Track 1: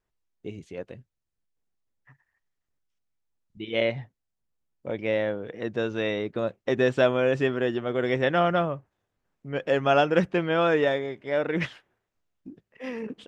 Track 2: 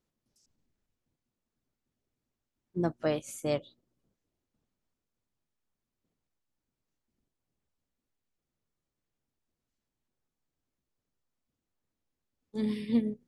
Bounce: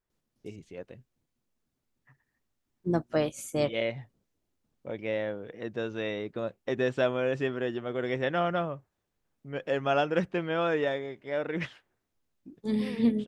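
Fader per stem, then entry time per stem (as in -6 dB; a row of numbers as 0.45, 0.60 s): -5.5, +2.5 dB; 0.00, 0.10 s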